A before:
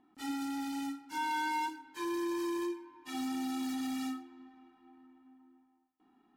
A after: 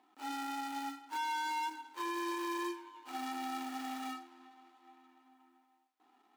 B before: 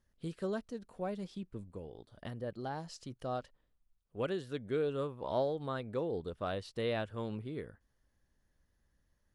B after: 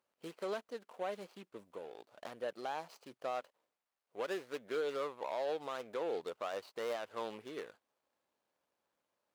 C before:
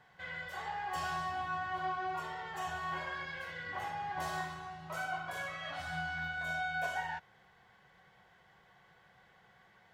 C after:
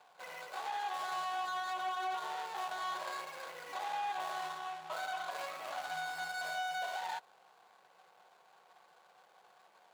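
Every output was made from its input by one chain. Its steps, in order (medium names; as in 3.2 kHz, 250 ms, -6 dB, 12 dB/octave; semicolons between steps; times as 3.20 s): median filter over 25 samples; high-pass 670 Hz 12 dB/octave; peak limiter -36.5 dBFS; trim +8 dB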